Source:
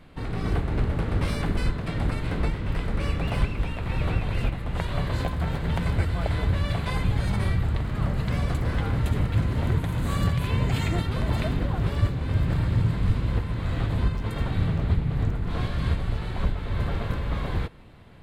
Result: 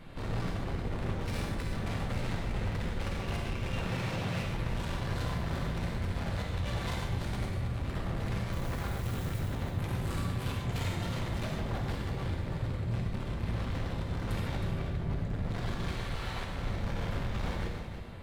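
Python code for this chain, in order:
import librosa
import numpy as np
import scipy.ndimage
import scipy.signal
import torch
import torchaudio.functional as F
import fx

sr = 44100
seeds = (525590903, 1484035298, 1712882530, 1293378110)

y = fx.highpass(x, sr, hz=110.0, slope=24, at=(3.74, 4.4))
y = fx.low_shelf(y, sr, hz=470.0, db=-10.0, at=(15.87, 16.45))
y = fx.over_compress(y, sr, threshold_db=-26.0, ratio=-0.5)
y = fx.dmg_noise_colour(y, sr, seeds[0], colour='white', level_db=-50.0, at=(8.51, 9.38), fade=0.02)
y = np.clip(y, -10.0 ** (-34.0 / 20.0), 10.0 ** (-34.0 / 20.0))
y = y + 10.0 ** (-9.5 / 20.0) * np.pad(y, (int(316 * sr / 1000.0), 0))[:len(y)]
y = fx.rev_gated(y, sr, seeds[1], gate_ms=170, shape='flat', drr_db=0.0)
y = y * 10.0 ** (-2.0 / 20.0)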